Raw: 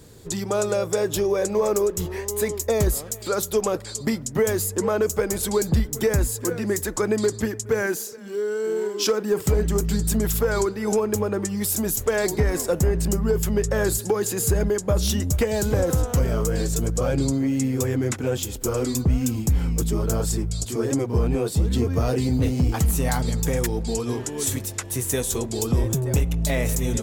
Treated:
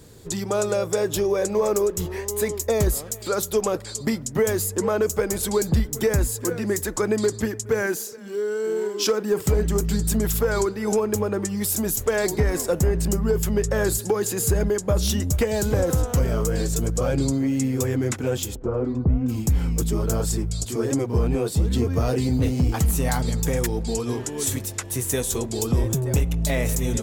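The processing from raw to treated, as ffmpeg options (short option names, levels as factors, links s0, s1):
-filter_complex "[0:a]asplit=3[s0][s1][s2];[s0]afade=t=out:st=18.54:d=0.02[s3];[s1]lowpass=1100,afade=t=in:st=18.54:d=0.02,afade=t=out:st=19.28:d=0.02[s4];[s2]afade=t=in:st=19.28:d=0.02[s5];[s3][s4][s5]amix=inputs=3:normalize=0"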